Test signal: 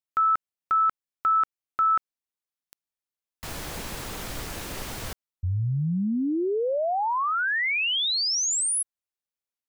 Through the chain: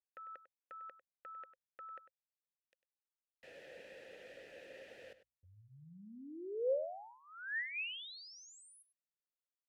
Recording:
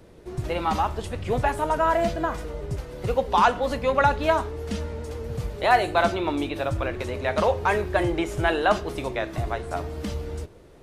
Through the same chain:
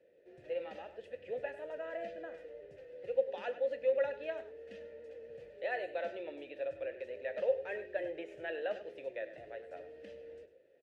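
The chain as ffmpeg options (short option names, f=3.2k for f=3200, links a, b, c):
-filter_complex "[0:a]asplit=3[a][b][c];[a]bandpass=f=530:t=q:w=8,volume=0dB[d];[b]bandpass=f=1.84k:t=q:w=8,volume=-6dB[e];[c]bandpass=f=2.48k:t=q:w=8,volume=-9dB[f];[d][e][f]amix=inputs=3:normalize=0,bandreject=f=60:t=h:w=6,bandreject=f=120:t=h:w=6,asplit=2[g][h];[h]adelay=99.13,volume=-13dB,highshelf=f=4k:g=-2.23[i];[g][i]amix=inputs=2:normalize=0,volume=-5.5dB"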